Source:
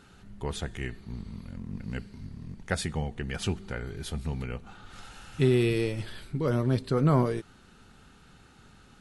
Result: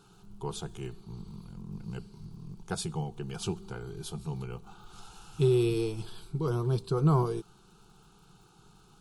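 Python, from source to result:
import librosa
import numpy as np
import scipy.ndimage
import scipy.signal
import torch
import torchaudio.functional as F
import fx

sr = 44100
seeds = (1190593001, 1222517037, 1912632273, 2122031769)

y = fx.dmg_crackle(x, sr, seeds[0], per_s=74.0, level_db=-54.0)
y = fx.fixed_phaser(y, sr, hz=380.0, stages=8)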